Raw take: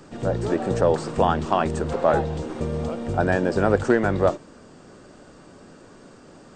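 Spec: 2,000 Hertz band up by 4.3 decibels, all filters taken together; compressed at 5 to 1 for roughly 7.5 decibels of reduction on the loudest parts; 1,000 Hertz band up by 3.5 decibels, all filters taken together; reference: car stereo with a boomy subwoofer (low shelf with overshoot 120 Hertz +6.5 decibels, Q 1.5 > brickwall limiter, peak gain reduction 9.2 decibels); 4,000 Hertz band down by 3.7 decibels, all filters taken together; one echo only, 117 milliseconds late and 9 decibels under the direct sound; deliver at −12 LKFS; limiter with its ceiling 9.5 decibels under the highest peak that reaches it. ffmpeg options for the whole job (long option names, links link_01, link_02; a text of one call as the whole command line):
ffmpeg -i in.wav -af "equalizer=frequency=1000:width_type=o:gain=4,equalizer=frequency=2000:width_type=o:gain=5.5,equalizer=frequency=4000:width_type=o:gain=-8,acompressor=threshold=-20dB:ratio=5,alimiter=limit=-16.5dB:level=0:latency=1,lowshelf=frequency=120:width_type=q:width=1.5:gain=6.5,aecho=1:1:117:0.355,volume=20dB,alimiter=limit=-2.5dB:level=0:latency=1" out.wav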